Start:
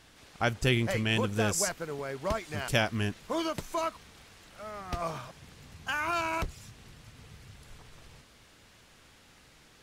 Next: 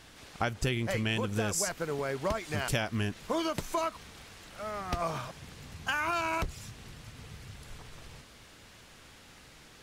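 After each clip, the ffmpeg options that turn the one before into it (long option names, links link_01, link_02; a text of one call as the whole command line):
ffmpeg -i in.wav -af "acompressor=threshold=-31dB:ratio=6,volume=4dB" out.wav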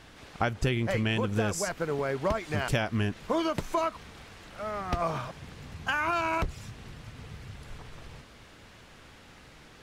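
ffmpeg -i in.wav -af "highshelf=frequency=4200:gain=-9.5,volume=3.5dB" out.wav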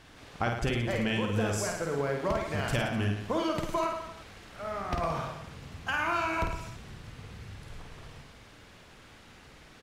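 ffmpeg -i in.wav -af "aecho=1:1:50|107.5|173.6|249.7|337.1:0.631|0.398|0.251|0.158|0.1,volume=-3dB" out.wav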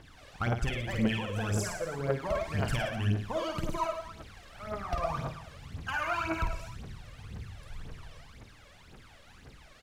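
ffmpeg -i in.wav -af "aeval=exprs='clip(val(0),-1,0.0794)':channel_layout=same,aphaser=in_gain=1:out_gain=1:delay=1.9:decay=0.69:speed=1.9:type=triangular,volume=-5dB" out.wav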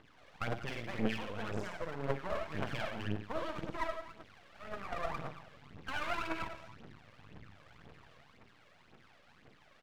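ffmpeg -i in.wav -af "highpass=150,lowpass=2800,aeval=exprs='max(val(0),0)':channel_layout=same,volume=-1dB" out.wav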